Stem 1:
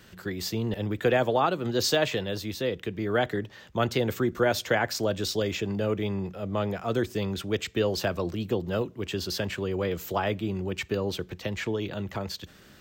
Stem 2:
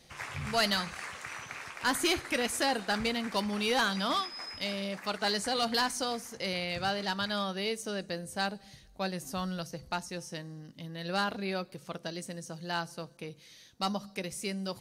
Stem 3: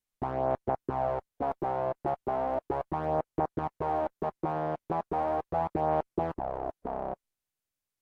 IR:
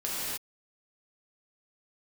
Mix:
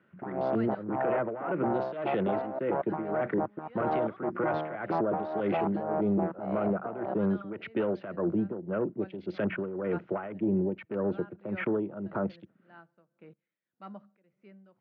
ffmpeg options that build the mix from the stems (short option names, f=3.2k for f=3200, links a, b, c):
-filter_complex "[0:a]aeval=exprs='clip(val(0),-1,0.0668)':c=same,bandreject=f=1.7k:w=15,afwtdn=0.0112,volume=2.5dB[a];[1:a]aeval=exprs='val(0)*pow(10,-18*if(lt(mod(-1.2*n/s,1),2*abs(-1.2)/1000),1-mod(-1.2*n/s,1)/(2*abs(-1.2)/1000),(mod(-1.2*n/s,1)-2*abs(-1.2)/1000)/(1-2*abs(-1.2)/1000))/20)':c=same,volume=-9.5dB[b];[2:a]volume=1.5dB[c];[a][b]amix=inputs=2:normalize=0,alimiter=limit=-20.5dB:level=0:latency=1:release=38,volume=0dB[d];[c][d]amix=inputs=2:normalize=0,tremolo=f=1.8:d=0.77,highpass=f=130:w=0.5412,highpass=f=130:w=1.3066,equalizer=f=200:t=q:w=4:g=5,equalizer=f=340:t=q:w=4:g=6,equalizer=f=600:t=q:w=4:g=5,equalizer=f=1.4k:t=q:w=4:g=7,lowpass=f=2.3k:w=0.5412,lowpass=f=2.3k:w=1.3066,alimiter=limit=-20.5dB:level=0:latency=1:release=11"